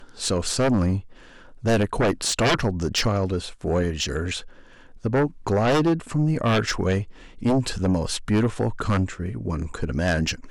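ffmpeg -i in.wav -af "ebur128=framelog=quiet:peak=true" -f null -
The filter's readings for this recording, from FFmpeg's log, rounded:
Integrated loudness:
  I:         -23.8 LUFS
  Threshold: -34.1 LUFS
Loudness range:
  LRA:         1.9 LU
  Threshold: -44.0 LUFS
  LRA low:   -25.0 LUFS
  LRA high:  -23.1 LUFS
True peak:
  Peak:      -14.8 dBFS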